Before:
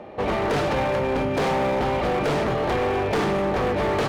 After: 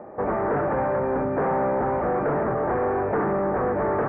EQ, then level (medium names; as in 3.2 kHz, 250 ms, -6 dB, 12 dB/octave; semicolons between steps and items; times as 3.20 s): steep low-pass 1.7 kHz 36 dB/octave; bass shelf 100 Hz -9 dB; 0.0 dB